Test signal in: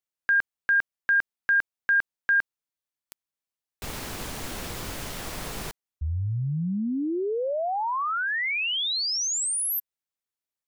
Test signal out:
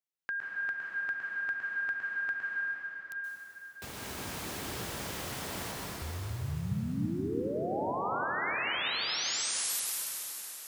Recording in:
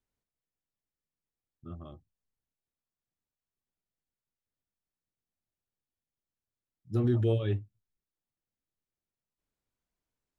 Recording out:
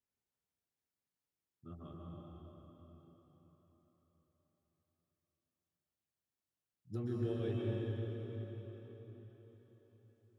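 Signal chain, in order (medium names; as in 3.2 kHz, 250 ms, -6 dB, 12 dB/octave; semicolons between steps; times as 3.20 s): high-pass 77 Hz 12 dB/octave; compression 2:1, threshold -34 dBFS; plate-style reverb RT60 4.7 s, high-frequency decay 0.85×, pre-delay 115 ms, DRR -4 dB; trim -6.5 dB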